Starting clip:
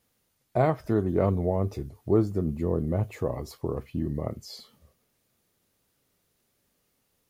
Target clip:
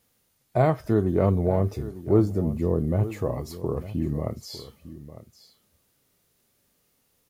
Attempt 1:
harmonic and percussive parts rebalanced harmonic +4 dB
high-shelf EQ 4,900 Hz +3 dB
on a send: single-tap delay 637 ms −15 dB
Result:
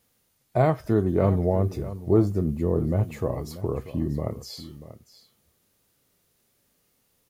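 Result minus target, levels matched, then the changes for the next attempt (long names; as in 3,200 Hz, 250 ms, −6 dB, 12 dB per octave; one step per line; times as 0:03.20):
echo 266 ms early
change: single-tap delay 903 ms −15 dB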